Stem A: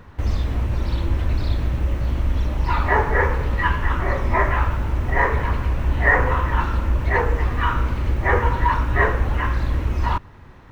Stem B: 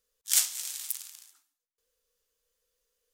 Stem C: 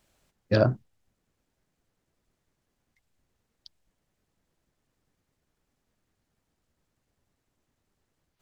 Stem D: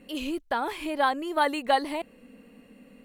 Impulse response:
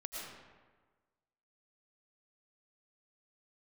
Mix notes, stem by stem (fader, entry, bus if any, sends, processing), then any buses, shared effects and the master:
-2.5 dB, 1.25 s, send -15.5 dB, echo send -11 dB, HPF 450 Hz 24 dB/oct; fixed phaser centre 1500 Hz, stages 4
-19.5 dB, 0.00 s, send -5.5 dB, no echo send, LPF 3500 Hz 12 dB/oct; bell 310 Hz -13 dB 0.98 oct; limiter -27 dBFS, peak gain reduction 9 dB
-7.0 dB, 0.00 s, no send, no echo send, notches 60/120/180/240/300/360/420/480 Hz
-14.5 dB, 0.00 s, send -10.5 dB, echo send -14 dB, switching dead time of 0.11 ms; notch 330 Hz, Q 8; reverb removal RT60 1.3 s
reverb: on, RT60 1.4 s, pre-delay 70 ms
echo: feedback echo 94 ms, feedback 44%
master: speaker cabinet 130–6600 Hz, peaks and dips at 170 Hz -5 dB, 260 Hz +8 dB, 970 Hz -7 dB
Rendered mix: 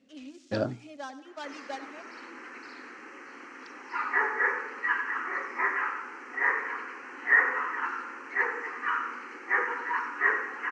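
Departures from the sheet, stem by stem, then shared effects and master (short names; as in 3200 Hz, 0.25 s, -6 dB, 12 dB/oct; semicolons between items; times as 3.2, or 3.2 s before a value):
stem B: missing LPF 3500 Hz 12 dB/oct; reverb return -9.5 dB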